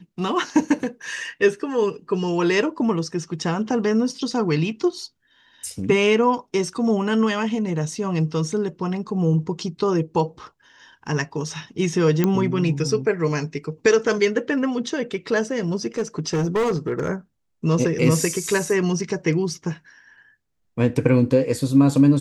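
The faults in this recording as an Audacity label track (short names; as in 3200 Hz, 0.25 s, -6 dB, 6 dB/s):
12.240000	12.240000	pop -7 dBFS
15.980000	17.100000	clipped -17.5 dBFS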